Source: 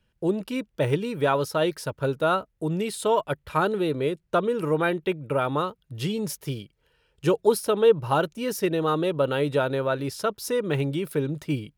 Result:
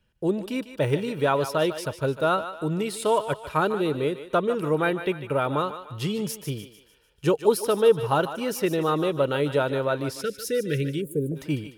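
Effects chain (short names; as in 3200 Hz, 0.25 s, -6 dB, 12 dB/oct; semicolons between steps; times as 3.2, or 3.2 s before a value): thinning echo 0.149 s, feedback 47%, high-pass 510 Hz, level -10.5 dB; 11.01–11.36 spectral gain 710–6700 Hz -24 dB; 10.21–11.32 elliptic band-stop 520–1500 Hz, stop band 40 dB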